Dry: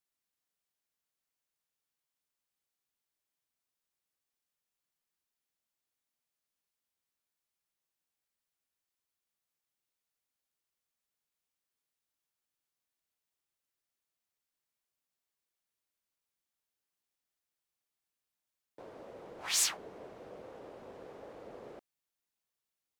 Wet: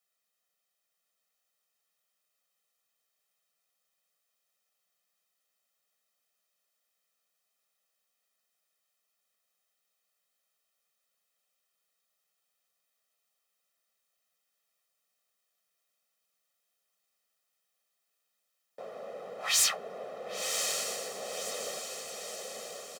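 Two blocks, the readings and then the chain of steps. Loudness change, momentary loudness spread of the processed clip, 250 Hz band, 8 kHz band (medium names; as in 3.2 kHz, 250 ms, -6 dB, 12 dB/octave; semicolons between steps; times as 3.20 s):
-0.5 dB, 18 LU, -0.5 dB, +6.0 dB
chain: high-pass 190 Hz 24 dB/octave; comb 1.6 ms, depth 94%; saturation -22 dBFS, distortion -14 dB; on a send: echo that smears into a reverb 1075 ms, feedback 54%, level -4 dB; on the sum: trim +4 dB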